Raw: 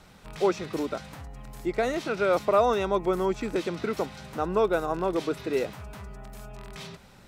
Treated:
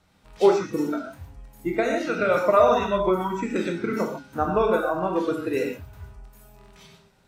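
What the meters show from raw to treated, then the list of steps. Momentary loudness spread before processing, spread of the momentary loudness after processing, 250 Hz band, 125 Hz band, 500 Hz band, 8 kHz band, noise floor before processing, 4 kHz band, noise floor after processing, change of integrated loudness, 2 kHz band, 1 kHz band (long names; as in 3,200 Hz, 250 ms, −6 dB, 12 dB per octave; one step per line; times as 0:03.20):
20 LU, 11 LU, +4.5 dB, +2.5 dB, +4.0 dB, can't be measured, −53 dBFS, +0.5 dB, −61 dBFS, +4.0 dB, +4.5 dB, +4.0 dB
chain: transient designer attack +5 dB, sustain 0 dB
reverb whose tail is shaped and stops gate 170 ms flat, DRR 0 dB
noise reduction from a noise print of the clip's start 12 dB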